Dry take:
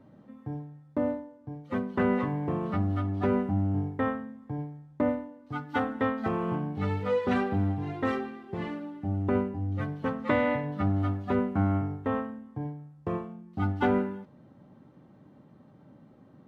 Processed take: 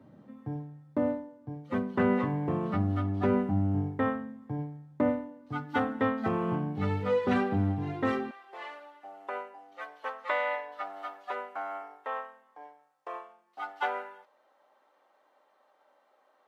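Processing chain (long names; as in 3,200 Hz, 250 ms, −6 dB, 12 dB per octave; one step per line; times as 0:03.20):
high-pass filter 79 Hz 24 dB per octave, from 0:08.31 620 Hz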